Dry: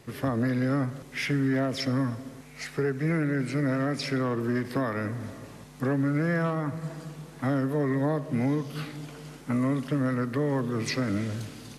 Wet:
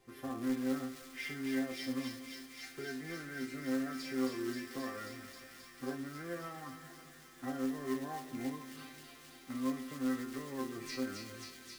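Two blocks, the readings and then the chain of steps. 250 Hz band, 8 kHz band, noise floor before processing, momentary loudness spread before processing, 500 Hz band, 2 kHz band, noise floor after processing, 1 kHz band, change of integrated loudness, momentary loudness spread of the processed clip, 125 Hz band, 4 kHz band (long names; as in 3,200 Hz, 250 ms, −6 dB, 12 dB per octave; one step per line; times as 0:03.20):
−10.0 dB, −4.5 dB, −47 dBFS, 12 LU, −12.5 dB, −10.0 dB, −56 dBFS, −10.5 dB, −11.5 dB, 13 LU, −23.0 dB, −7.5 dB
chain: resonators tuned to a chord C4 sus4, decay 0.34 s
floating-point word with a short mantissa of 2 bits
on a send: delay with a high-pass on its return 267 ms, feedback 83%, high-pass 2,400 Hz, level −3.5 dB
on the sum: spring reverb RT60 2.9 s, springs 34 ms, DRR 16.5 dB
level +7 dB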